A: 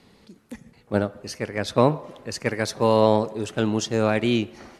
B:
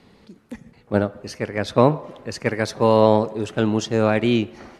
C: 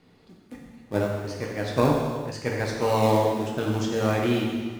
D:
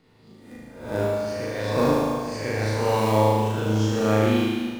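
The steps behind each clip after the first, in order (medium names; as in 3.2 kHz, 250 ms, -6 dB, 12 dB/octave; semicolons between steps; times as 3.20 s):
treble shelf 4.7 kHz -8 dB; trim +3 dB
in parallel at -11 dB: decimation with a swept rate 36×, swing 60% 0.62 Hz; on the sum: gated-style reverb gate 490 ms falling, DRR -2 dB; trim -9 dB
reverse spectral sustain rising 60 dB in 0.65 s; flutter echo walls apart 6.4 m, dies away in 1.2 s; trim -5 dB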